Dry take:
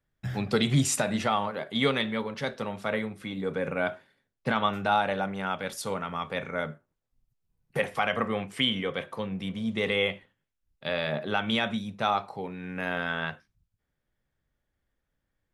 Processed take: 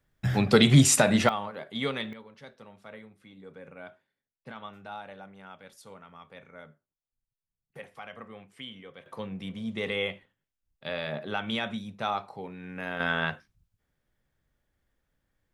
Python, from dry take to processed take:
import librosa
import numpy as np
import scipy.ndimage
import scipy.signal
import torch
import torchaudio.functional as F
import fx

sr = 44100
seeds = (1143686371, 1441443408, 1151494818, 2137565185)

y = fx.gain(x, sr, db=fx.steps((0.0, 6.0), (1.29, -5.5), (2.13, -16.5), (9.06, -4.0), (13.0, 3.0)))